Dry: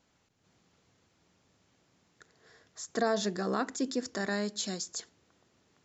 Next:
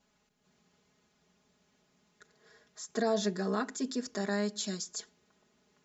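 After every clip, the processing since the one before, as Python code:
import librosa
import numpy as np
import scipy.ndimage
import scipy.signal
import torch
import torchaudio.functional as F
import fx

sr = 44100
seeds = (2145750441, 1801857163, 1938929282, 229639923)

y = x + 0.97 * np.pad(x, (int(4.8 * sr / 1000.0), 0))[:len(x)]
y = F.gain(torch.from_numpy(y), -4.5).numpy()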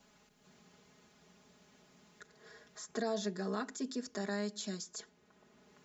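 y = fx.band_squash(x, sr, depth_pct=40)
y = F.gain(torch.from_numpy(y), -4.5).numpy()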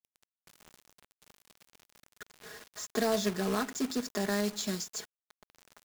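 y = fx.quant_companded(x, sr, bits=4)
y = F.gain(torch.from_numpy(y), 6.0).numpy()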